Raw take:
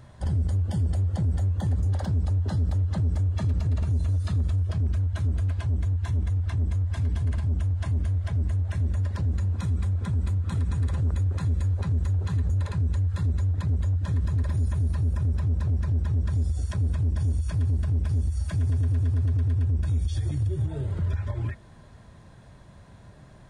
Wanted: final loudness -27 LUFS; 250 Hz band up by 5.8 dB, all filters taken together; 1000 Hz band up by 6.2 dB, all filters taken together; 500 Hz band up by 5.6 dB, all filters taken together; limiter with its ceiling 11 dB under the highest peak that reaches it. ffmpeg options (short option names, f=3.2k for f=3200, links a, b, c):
-af "equalizer=f=250:t=o:g=7,equalizer=f=500:t=o:g=3.5,equalizer=f=1k:t=o:g=6,volume=5dB,alimiter=limit=-20dB:level=0:latency=1"